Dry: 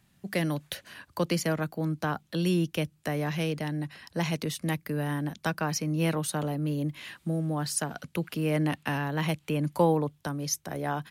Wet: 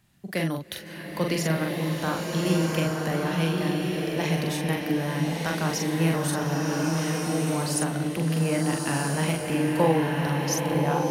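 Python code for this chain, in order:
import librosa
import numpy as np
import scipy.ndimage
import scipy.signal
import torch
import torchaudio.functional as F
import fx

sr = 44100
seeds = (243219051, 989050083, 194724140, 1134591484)

y = fx.doubler(x, sr, ms=43.0, db=-4)
y = fx.rev_bloom(y, sr, seeds[0], attack_ms=1340, drr_db=-0.5)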